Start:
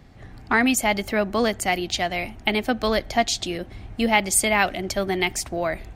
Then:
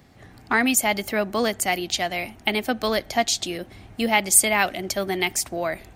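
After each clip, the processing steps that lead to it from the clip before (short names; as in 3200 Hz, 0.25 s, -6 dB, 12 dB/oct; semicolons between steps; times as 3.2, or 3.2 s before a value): HPF 130 Hz 6 dB/oct; high shelf 8100 Hz +10 dB; gain -1 dB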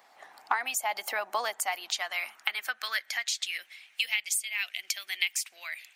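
harmonic-percussive split harmonic -7 dB; compressor 10:1, threshold -28 dBFS, peak gain reduction 17.5 dB; high-pass sweep 840 Hz -> 2500 Hz, 1.45–3.9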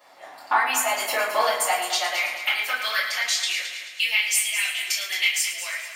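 multi-head echo 0.109 s, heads first and second, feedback 49%, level -12 dB; shoebox room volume 43 m³, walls mixed, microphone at 2.6 m; gain -4 dB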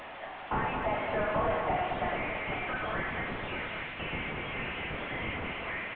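delta modulation 16 kbps, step -37.5 dBFS; echo 0.827 s -11 dB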